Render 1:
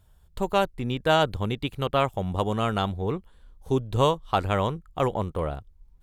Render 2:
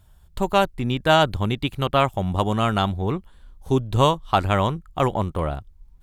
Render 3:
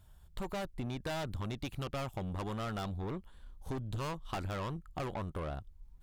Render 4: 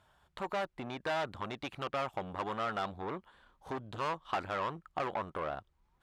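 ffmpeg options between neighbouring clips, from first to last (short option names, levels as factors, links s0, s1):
-af "equalizer=f=470:w=4.2:g=-6.5,volume=1.78"
-af "aeval=exprs='(tanh(17.8*val(0)+0.35)-tanh(0.35))/17.8':c=same,acompressor=threshold=0.0316:ratio=6,volume=0.596"
-af "bandpass=f=1200:t=q:w=0.64:csg=0,volume=2.24"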